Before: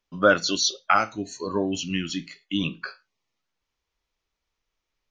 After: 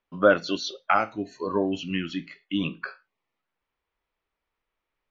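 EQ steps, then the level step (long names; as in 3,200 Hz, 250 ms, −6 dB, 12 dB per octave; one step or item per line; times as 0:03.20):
low-pass filter 2,300 Hz 12 dB per octave
low-shelf EQ 200 Hz −7.5 dB
dynamic equaliser 1,400 Hz, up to −5 dB, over −34 dBFS, Q 1.3
+2.5 dB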